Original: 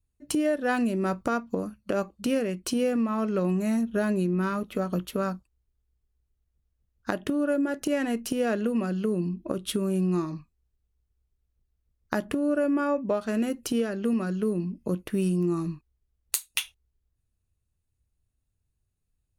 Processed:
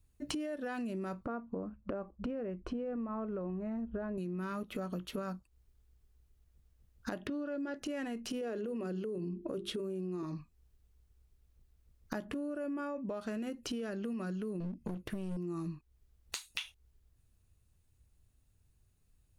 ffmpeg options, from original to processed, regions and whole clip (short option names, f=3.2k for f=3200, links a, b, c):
-filter_complex "[0:a]asettb=1/sr,asplit=3[a][b][c];[a]atrim=end=1.254[d];[b]atrim=start=1.25:end=4.18,asetpts=PTS-STARTPTS,afade=t=in:d=0.004:c=qsin,afade=t=out:st=2.926:d=0.004:c=qsin,lowpass=1.2k,asubboost=boost=9:cutoff=73[e];[c]atrim=start=4.176[f];[d][e]acrossfade=d=0.004:c1=hsin:c2=qsin[g];[g][f]acrossfade=d=0.004:c1=qsin:c2=hsin,asettb=1/sr,asplit=3[h][i][j];[h]atrim=end=7.274[k];[i]atrim=start=7.27:end=7.76,asetpts=PTS-STARTPTS,afade=t=in:d=0.004:c=qsin,afade=t=out:st=0.486:d=0.004:c=qsin,acrossover=split=3100[l][m];[m]acompressor=threshold=-58dB:ratio=4:attack=1:release=60[n];[l][n]amix=inputs=2:normalize=0,lowpass=f=4.9k:t=q:w=3.4[o];[j]atrim=start=7.756[p];[k][o]acrossfade=d=0.004:c1=hsin:c2=qsin[q];[q][p]acrossfade=d=0.004:c1=qsin:c2=hsin,asettb=1/sr,asplit=3[r][s][t];[r]atrim=end=8.414[u];[s]atrim=start=8.41:end=10.23,asetpts=PTS-STARTPTS,afade=t=in:d=0.004:c=qsin,afade=t=out:st=1.816:d=0.004:c=qsin,equalizer=f=410:t=o:w=0.72:g=10,bandreject=f=50:t=h:w=6,bandreject=f=100:t=h:w=6,bandreject=f=150:t=h:w=6,bandreject=f=200:t=h:w=6,bandreject=f=250:t=h:w=6,bandreject=f=300:t=h:w=6,bandreject=f=350:t=h:w=6,bandreject=f=400:t=h:w=6[v];[t]atrim=start=10.226[w];[u][v]acrossfade=d=0.004:c1=hsin:c2=qsin[x];[x][w]acrossfade=d=0.004:c1=qsin:c2=hsin,asettb=1/sr,asplit=3[y][z][aa];[y]atrim=end=14.604[ab];[z]atrim=start=14.6:end=15.37,asetpts=PTS-STARTPTS,afade=t=in:d=0.004:c=qsin,afade=t=out:st=0.766:d=0.004:c=qsin,equalizer=f=110:w=0.75:g=7,aeval=exprs='clip(val(0),-1,0.0299)':c=same[ac];[aa]atrim=start=15.366[ad];[ab][ac]acrossfade=d=0.004:c1=hsin:c2=qsin[ae];[ae][ad]acrossfade=d=0.004:c1=qsin:c2=hsin,acrossover=split=6100[af][ag];[ag]acompressor=threshold=-51dB:ratio=4:attack=1:release=60[ah];[af][ah]amix=inputs=2:normalize=0,alimiter=limit=-22.5dB:level=0:latency=1:release=23,acompressor=threshold=-44dB:ratio=8,volume=7.5dB"